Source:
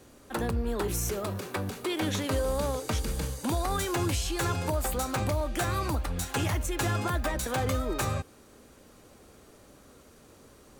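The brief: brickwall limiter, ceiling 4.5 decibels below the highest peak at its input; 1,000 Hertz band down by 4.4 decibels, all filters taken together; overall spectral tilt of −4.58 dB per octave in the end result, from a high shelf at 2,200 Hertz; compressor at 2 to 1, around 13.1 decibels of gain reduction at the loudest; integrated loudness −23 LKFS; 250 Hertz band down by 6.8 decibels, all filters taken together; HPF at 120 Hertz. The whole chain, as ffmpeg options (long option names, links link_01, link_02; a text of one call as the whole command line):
ffmpeg -i in.wav -af "highpass=120,equalizer=frequency=250:width_type=o:gain=-9,equalizer=frequency=1000:width_type=o:gain=-3.5,highshelf=frequency=2200:gain=-8,acompressor=threshold=-55dB:ratio=2,volume=26.5dB,alimiter=limit=-13dB:level=0:latency=1" out.wav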